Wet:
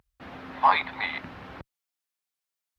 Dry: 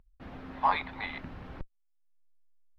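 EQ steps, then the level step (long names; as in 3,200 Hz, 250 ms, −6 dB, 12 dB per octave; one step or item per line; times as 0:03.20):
high-pass filter 75 Hz 12 dB per octave
low-shelf EQ 500 Hz −8.5 dB
+8.0 dB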